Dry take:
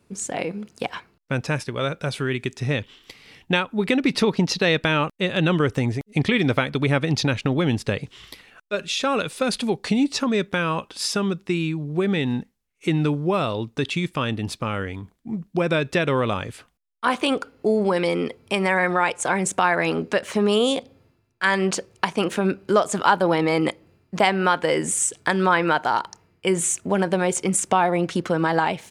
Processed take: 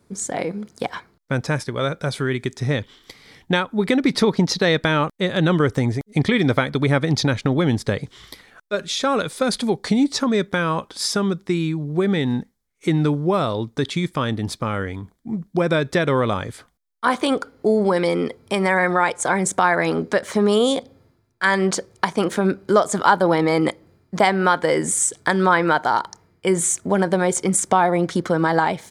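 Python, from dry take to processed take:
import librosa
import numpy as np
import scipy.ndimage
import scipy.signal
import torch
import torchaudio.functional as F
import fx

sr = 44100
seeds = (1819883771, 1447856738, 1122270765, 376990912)

y = fx.peak_eq(x, sr, hz=2700.0, db=-14.0, octaves=0.22)
y = F.gain(torch.from_numpy(y), 2.5).numpy()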